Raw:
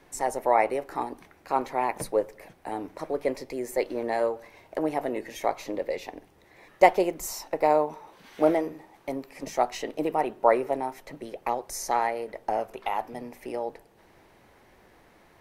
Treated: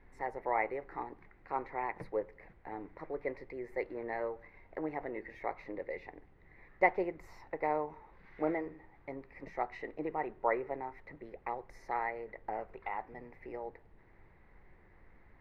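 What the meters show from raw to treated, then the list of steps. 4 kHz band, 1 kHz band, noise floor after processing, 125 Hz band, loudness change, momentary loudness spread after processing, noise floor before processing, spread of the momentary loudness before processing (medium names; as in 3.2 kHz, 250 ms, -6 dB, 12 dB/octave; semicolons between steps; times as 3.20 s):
under -20 dB, -10.5 dB, -61 dBFS, -7.5 dB, -10.5 dB, 14 LU, -58 dBFS, 14 LU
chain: graphic EQ with 31 bands 250 Hz -7 dB, 630 Hz -6 dB, 2 kHz +10 dB, 3.15 kHz -12 dB; added noise brown -52 dBFS; distance through air 390 m; trim -7.5 dB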